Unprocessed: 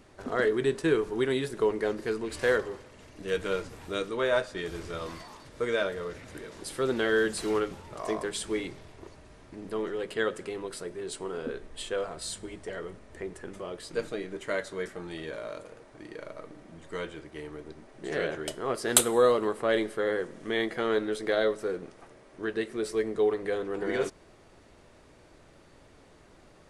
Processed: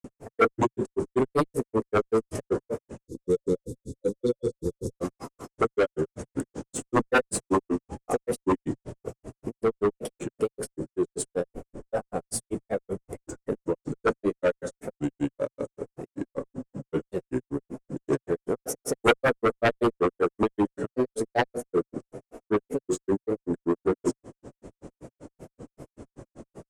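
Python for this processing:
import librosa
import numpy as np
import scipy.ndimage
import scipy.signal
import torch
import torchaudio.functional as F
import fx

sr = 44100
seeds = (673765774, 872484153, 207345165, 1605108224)

p1 = fx.granulator(x, sr, seeds[0], grain_ms=98.0, per_s=5.2, spray_ms=100.0, spread_st=3)
p2 = fx.graphic_eq(p1, sr, hz=(125, 250, 500, 2000, 4000, 8000), db=(8, 8, 7, -5, -11, 7))
p3 = fx.cheby_harmonics(p2, sr, harmonics=(3, 7), levels_db=(-13, -7), full_scale_db=-6.5)
p4 = fx.spec_erase(p3, sr, start_s=3.02, length_s=1.89, low_hz=550.0, high_hz=3400.0)
p5 = 10.0 ** (-26.5 / 20.0) * np.tanh(p4 / 10.0 ** (-26.5 / 20.0))
p6 = p4 + F.gain(torch.from_numpy(p5), -7.0).numpy()
y = F.gain(torch.from_numpy(p6), -3.0).numpy()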